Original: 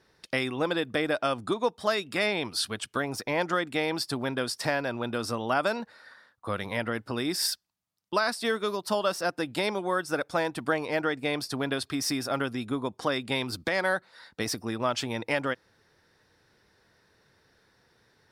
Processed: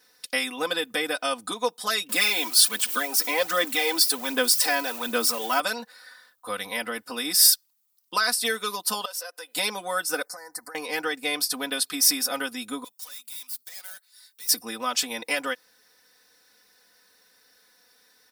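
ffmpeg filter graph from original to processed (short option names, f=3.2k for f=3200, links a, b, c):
-filter_complex "[0:a]asettb=1/sr,asplit=3[a][b][c];[a]atrim=end=2.094[d];[b]atrim=start=2.09:end=5.6,asetpts=PTS-STARTPTS,afade=t=in:d=0.004:c=qsin,afade=t=out:st=3.506:d=0.004:c=qsin,aeval=exprs='val(0)+0.5*0.00944*sgn(val(0))':c=same,aphaser=in_gain=1:out_gain=1:delay=3.1:decay=0.49:speed=1.3:type=sinusoidal,highpass=f=190:w=0.5412,highpass=f=190:w=1.3066[e];[c]atrim=start=5.596[f];[d][e]acrossfade=d=0.004:c1=hsin:c2=qsin[g];[g][f]acrossfade=d=0.004:c1=qsin:c2=hsin,asettb=1/sr,asplit=3[h][i][j];[h]atrim=end=9.054[k];[i]atrim=start=9.05:end=9.56,asetpts=PTS-STARTPTS,afade=t=in:d=0.004:c=qsin,afade=t=out:st=0.506:d=0.004:c=qsin,highpass=f=440:w=0.5412,highpass=f=440:w=1.3066,aecho=1:1:2:0.32,atrim=end_sample=22491,acompressor=threshold=-43dB:ratio=2.5:attack=3.2:release=140:knee=1:detection=peak[l];[j]atrim=start=9.556[m];[k][l]acrossfade=d=0.004:c1=hsin:c2=qsin[n];[n][m]acrossfade=d=0.004:c1=qsin:c2=hsin,asettb=1/sr,asplit=3[o][p][q];[o]atrim=end=10.254[r];[p]atrim=start=10.25:end=10.75,asetpts=PTS-STARTPTS,afade=t=in:d=0.004:c=qsin,afade=t=out:st=0.496:d=0.004:c=qsin,equalizer=f=210:t=o:w=1.1:g=-14,acompressor=threshold=-38dB:ratio=12:attack=3.2:release=140:knee=1:detection=peak,asuperstop=centerf=3000:order=12:qfactor=1.4[s];[q]atrim=start=10.746[t];[r][s]acrossfade=d=0.004:c1=hsin:c2=qsin[u];[u][t]acrossfade=d=0.004:c1=qsin:c2=hsin,asettb=1/sr,asplit=3[v][w][x];[v]atrim=end=12.844[y];[w]atrim=start=12.84:end=14.49,asetpts=PTS-STARTPTS,afade=t=in:d=0.004:c=qsin,afade=t=out:st=1.646:d=0.004:c=qsin,aderivative,aeval=exprs='(tanh(224*val(0)+0.6)-tanh(0.6))/224':c=same[z];[x]atrim=start=14.486[aa];[y][z]acrossfade=d=0.004:c1=hsin:c2=qsin[ab];[ab][aa]acrossfade=d=0.004:c1=qsin:c2=hsin,aemphasis=mode=production:type=riaa,aecho=1:1:4:0.92,volume=-2dB"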